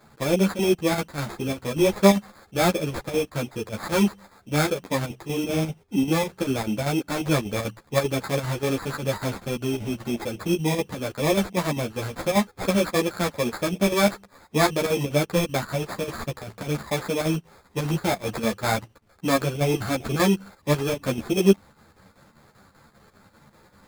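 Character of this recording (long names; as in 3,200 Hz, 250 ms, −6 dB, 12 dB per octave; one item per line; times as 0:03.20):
aliases and images of a low sample rate 2,900 Hz, jitter 0%
chopped level 5.1 Hz, depth 60%, duty 75%
a shimmering, thickened sound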